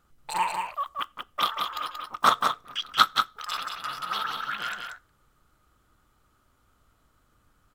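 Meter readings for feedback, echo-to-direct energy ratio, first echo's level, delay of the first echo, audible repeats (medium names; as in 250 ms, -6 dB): no regular repeats, -5.0 dB, -5.0 dB, 182 ms, 1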